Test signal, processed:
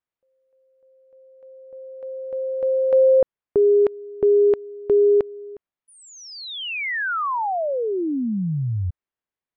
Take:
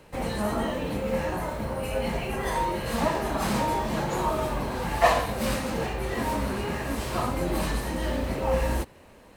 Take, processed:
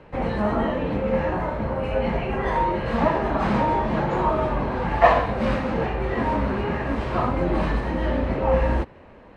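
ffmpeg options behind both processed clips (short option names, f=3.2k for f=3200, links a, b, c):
-af "lowpass=2.2k,volume=5dB"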